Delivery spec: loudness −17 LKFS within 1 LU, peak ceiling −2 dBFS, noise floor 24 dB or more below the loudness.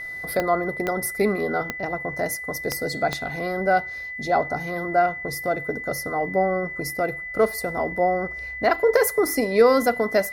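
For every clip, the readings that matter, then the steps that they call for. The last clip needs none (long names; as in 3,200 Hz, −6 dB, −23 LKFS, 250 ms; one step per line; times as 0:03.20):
number of clicks 5; interfering tone 2,000 Hz; level of the tone −31 dBFS; integrated loudness −23.5 LKFS; sample peak −5.5 dBFS; target loudness −17.0 LKFS
→ click removal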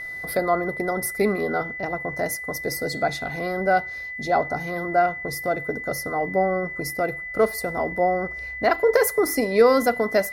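number of clicks 2; interfering tone 2,000 Hz; level of the tone −31 dBFS
→ notch filter 2,000 Hz, Q 30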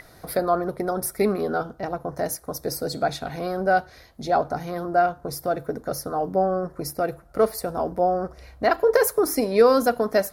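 interfering tone none found; integrated loudness −24.0 LKFS; sample peak −5.5 dBFS; target loudness −17.0 LKFS
→ level +7 dB
brickwall limiter −2 dBFS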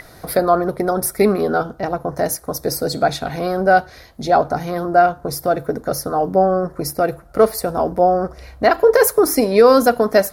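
integrated loudness −17.5 LKFS; sample peak −2.0 dBFS; background noise floor −44 dBFS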